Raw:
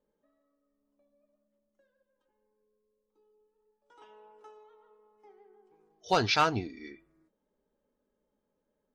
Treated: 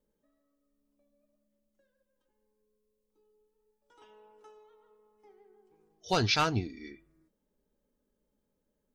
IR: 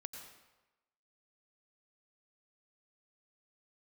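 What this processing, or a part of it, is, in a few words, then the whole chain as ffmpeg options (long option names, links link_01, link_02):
smiley-face EQ: -af "lowshelf=frequency=150:gain=7,equalizer=frequency=870:width_type=o:width=2.2:gain=-4.5,highshelf=frequency=6100:gain=4.5"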